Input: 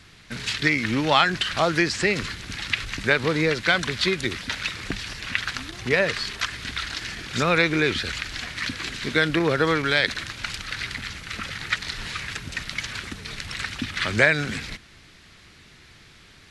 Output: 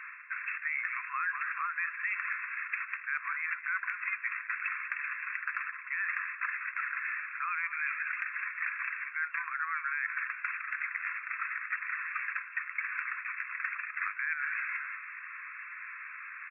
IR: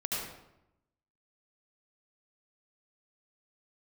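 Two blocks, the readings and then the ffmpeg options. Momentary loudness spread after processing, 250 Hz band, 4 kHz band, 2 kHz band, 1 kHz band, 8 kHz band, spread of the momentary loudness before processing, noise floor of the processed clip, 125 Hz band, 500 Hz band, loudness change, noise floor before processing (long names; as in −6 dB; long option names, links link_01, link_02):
4 LU, below −40 dB, below −40 dB, −6.5 dB, −9.0 dB, below −40 dB, 12 LU, −46 dBFS, below −40 dB, below −40 dB, −10.0 dB, −51 dBFS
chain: -filter_complex "[0:a]asplit=2[link_01][link_02];[link_02]asplit=3[link_03][link_04][link_05];[link_03]adelay=195,afreqshift=-51,volume=-16dB[link_06];[link_04]adelay=390,afreqshift=-102,volume=-25.6dB[link_07];[link_05]adelay=585,afreqshift=-153,volume=-35.3dB[link_08];[link_06][link_07][link_08]amix=inputs=3:normalize=0[link_09];[link_01][link_09]amix=inputs=2:normalize=0,acontrast=24,afftfilt=real='re*between(b*sr/4096,1000,2700)':imag='im*between(b*sr/4096,1000,2700)':win_size=4096:overlap=0.75,alimiter=limit=-10.5dB:level=0:latency=1:release=112,equalizer=frequency=1600:width_type=o:width=1.3:gain=8,areverse,acompressor=threshold=-35dB:ratio=4,areverse"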